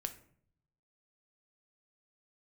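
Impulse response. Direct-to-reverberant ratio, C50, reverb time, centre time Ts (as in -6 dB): 7.5 dB, 13.5 dB, 0.60 s, 6 ms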